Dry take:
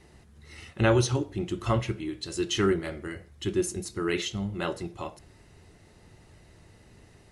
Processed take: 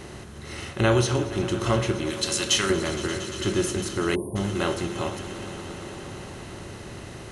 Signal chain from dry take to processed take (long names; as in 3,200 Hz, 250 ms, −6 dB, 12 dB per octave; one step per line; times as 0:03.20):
compressor on every frequency bin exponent 0.6
0:02.10–0:02.70: tilt shelving filter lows −9.5 dB, about 1,300 Hz
on a send: echo that builds up and dies away 116 ms, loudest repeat 5, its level −18 dB
0:04.15–0:04.36: on the sum: time-frequency box erased 1,100–8,600 Hz